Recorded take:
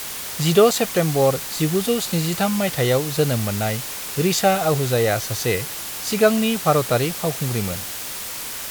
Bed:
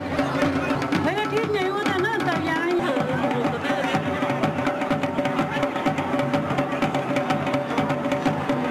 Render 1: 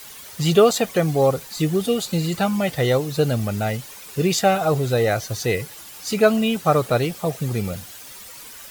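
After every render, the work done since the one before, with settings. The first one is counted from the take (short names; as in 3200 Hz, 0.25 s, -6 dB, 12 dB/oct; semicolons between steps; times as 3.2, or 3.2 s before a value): denoiser 12 dB, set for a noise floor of -31 dBFS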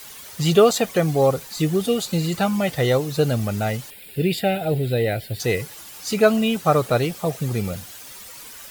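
3.9–5.4 fixed phaser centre 2700 Hz, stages 4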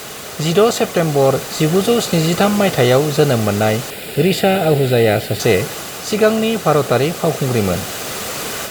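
per-bin compression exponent 0.6; AGC gain up to 7 dB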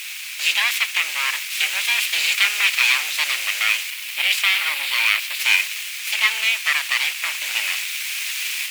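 full-wave rectifier; resonant high-pass 2400 Hz, resonance Q 4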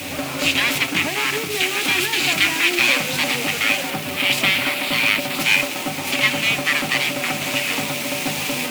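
add bed -4.5 dB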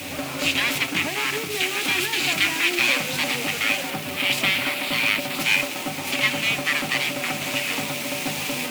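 gain -3.5 dB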